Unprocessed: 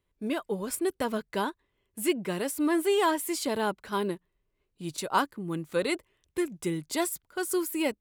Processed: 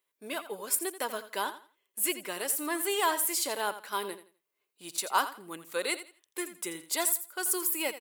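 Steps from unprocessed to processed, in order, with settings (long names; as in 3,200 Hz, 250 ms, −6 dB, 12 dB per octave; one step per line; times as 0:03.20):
Bessel high-pass filter 680 Hz, order 2
high-shelf EQ 8,900 Hz +11.5 dB
on a send: repeating echo 84 ms, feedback 24%, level −13 dB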